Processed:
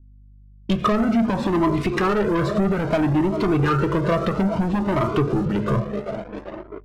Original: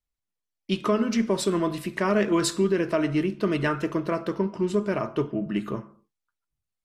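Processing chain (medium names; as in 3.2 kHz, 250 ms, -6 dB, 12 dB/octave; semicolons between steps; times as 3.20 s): dynamic bell 1.3 kHz, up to +4 dB, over -41 dBFS, Q 1.8; low-pass that closes with the level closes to 1.5 kHz, closed at -21.5 dBFS; peaking EQ 70 Hz +11.5 dB 2.2 oct; band-stop 1.7 kHz, Q 14; band-passed feedback delay 393 ms, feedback 81%, band-pass 540 Hz, level -15 dB; level rider gain up to 8 dB; waveshaping leveller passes 3; compression, threshold -13 dBFS, peak gain reduction 7.5 dB; hum 50 Hz, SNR 30 dB; level-controlled noise filter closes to 460 Hz, open at -18 dBFS; Shepard-style flanger rising 0.6 Hz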